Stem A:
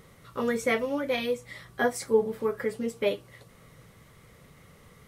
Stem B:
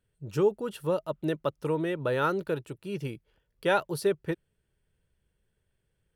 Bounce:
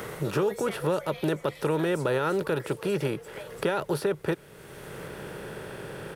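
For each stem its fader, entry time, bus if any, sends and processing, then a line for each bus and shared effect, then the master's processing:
+0.5 dB, 0.00 s, no send, echo send -16 dB, elliptic high-pass 470 Hz; high shelf 5600 Hz +10.5 dB; compressor, threshold -33 dBFS, peak gain reduction 12 dB; auto duck -10 dB, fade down 1.30 s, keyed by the second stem
+0.5 dB, 0.00 s, no send, no echo send, per-bin compression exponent 0.6; limiter -17.5 dBFS, peak gain reduction 7 dB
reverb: off
echo: feedback echo 0.342 s, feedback 55%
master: three-band squash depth 70%

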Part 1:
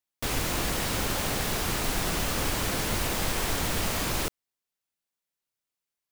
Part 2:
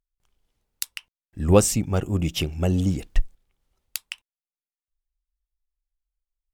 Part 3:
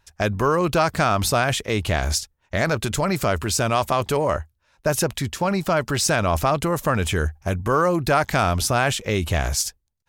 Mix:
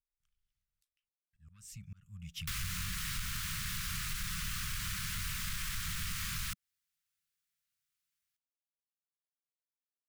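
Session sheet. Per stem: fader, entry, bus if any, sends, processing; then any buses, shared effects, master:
+1.0 dB, 2.25 s, bus A, no send, dry
-13.0 dB, 0.00 s, bus A, no send, dry
off
bus A: 0.0 dB, soft clip -20.5 dBFS, distortion -18 dB; compressor 6:1, threshold -34 dBFS, peak gain reduction 9.5 dB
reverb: off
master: inverse Chebyshev band-stop 280–800 Hz, stop band 40 dB; auto swell 0.594 s

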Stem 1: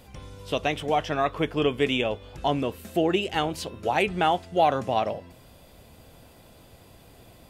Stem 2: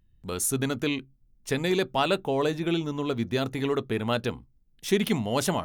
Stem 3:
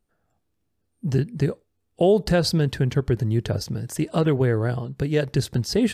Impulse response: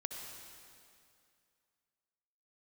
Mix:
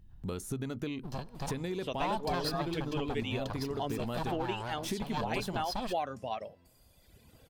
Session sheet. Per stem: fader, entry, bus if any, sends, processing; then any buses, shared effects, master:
-4.5 dB, 1.35 s, no send, reverb removal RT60 1.5 s
+1.0 dB, 0.00 s, no send, de-esser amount 55%; low shelf 490 Hz +7.5 dB; compressor 5:1, threshold -29 dBFS, peak gain reduction 14.5 dB
-4.0 dB, 0.00 s, send -17.5 dB, minimum comb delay 1.2 ms; graphic EQ 125/250/500/1000/2000/4000/8000 Hz -12/-4/-6/+6/-8/+6/-6 dB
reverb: on, RT60 2.4 s, pre-delay 58 ms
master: compressor 1.5:1, threshold -43 dBFS, peak gain reduction 8.5 dB

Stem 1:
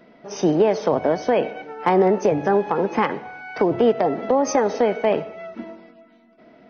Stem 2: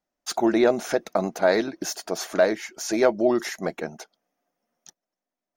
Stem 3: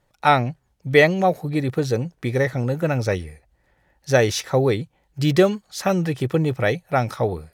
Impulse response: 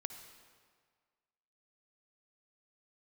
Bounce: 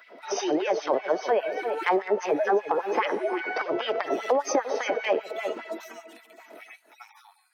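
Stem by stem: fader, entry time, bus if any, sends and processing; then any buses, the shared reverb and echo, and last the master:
+1.5 dB, 0.00 s, no send, echo send -14.5 dB, LFO high-pass sine 5 Hz 340–2600 Hz
-6.0 dB, 0.00 s, no send, no echo send, sine-wave speech
-3.0 dB, 0.00 s, no send, no echo send, median-filter separation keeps harmonic; steep high-pass 850 Hz 72 dB/oct; compressor, threshold -38 dBFS, peak gain reduction 19 dB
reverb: off
echo: echo 0.345 s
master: high shelf 11000 Hz +6 dB; compressor 2.5:1, threshold -25 dBFS, peak gain reduction 12 dB

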